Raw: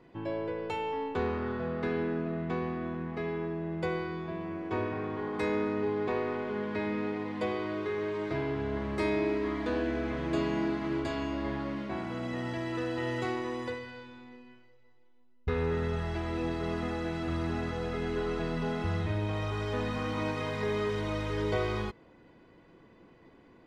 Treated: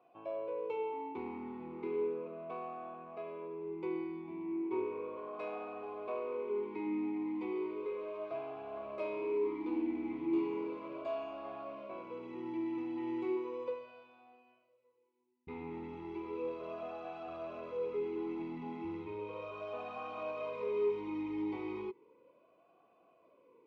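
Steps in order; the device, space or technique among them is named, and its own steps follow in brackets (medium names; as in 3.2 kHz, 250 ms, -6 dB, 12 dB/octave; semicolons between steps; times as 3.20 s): talk box (valve stage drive 24 dB, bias 0.3; talking filter a-u 0.35 Hz); trim +4.5 dB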